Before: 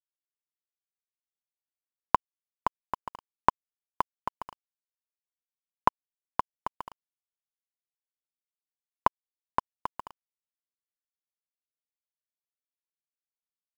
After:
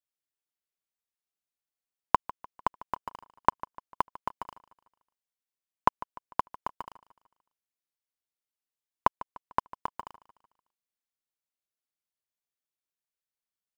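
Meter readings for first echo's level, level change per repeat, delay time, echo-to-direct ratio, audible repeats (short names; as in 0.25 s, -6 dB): -18.0 dB, -7.0 dB, 0.149 s, -17.0 dB, 3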